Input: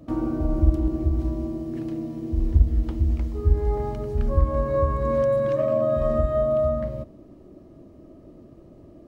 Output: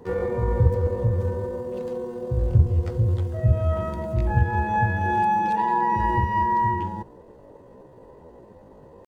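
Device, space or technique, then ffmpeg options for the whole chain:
chipmunk voice: -af "asetrate=68011,aresample=44100,atempo=0.64842"

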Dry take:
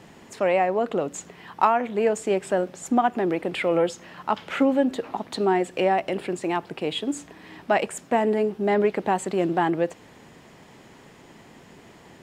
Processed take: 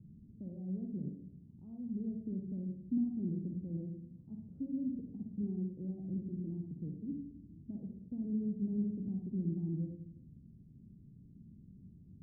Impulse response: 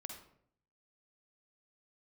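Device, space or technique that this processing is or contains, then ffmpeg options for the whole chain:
club heard from the street: -filter_complex "[0:a]alimiter=limit=0.178:level=0:latency=1:release=109,lowpass=f=190:w=0.5412,lowpass=f=190:w=1.3066[s0];[1:a]atrim=start_sample=2205[s1];[s0][s1]afir=irnorm=-1:irlink=0,volume=1.58"

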